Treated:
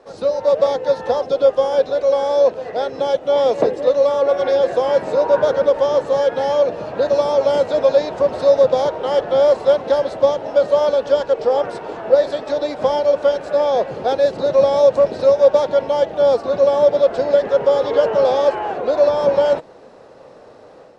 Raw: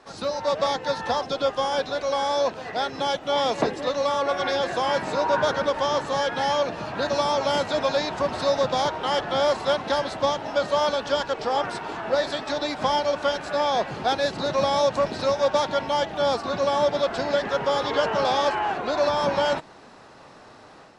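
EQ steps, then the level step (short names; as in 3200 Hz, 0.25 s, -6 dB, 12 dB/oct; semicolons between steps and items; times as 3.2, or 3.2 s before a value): low shelf 390 Hz +4.5 dB; bell 510 Hz +15 dB 0.82 oct; -4.0 dB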